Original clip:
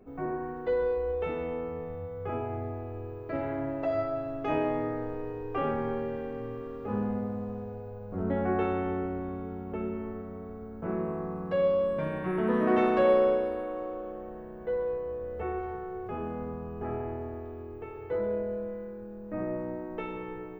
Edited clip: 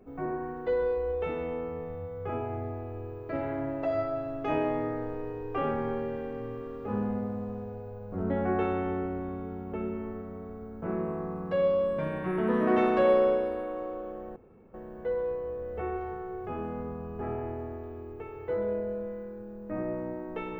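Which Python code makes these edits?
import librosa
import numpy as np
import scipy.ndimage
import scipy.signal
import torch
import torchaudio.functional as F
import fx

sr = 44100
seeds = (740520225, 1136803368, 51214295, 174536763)

y = fx.edit(x, sr, fx.insert_room_tone(at_s=14.36, length_s=0.38), tone=tone)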